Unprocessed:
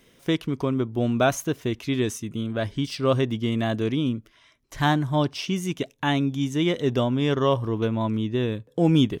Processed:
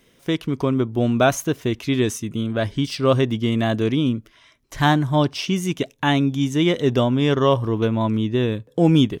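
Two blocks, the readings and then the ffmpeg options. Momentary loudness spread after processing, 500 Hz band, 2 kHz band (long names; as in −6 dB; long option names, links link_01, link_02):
6 LU, +4.0 dB, +4.0 dB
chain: -af "dynaudnorm=framelen=170:gausssize=5:maxgain=4.5dB"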